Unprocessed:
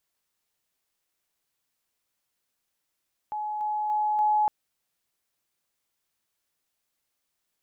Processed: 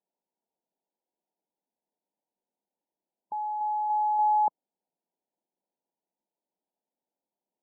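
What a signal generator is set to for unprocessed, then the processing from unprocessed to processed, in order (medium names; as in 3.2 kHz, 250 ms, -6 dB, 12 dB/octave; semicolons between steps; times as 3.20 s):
level ladder 847 Hz -28.5 dBFS, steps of 3 dB, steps 4, 0.29 s 0.00 s
brick-wall FIR band-pass 160–1000 Hz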